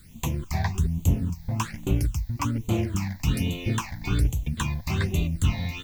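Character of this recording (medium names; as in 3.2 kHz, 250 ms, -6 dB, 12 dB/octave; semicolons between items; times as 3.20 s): a quantiser's noise floor 10-bit, dither triangular; phasing stages 8, 1.2 Hz, lowest notch 370–1600 Hz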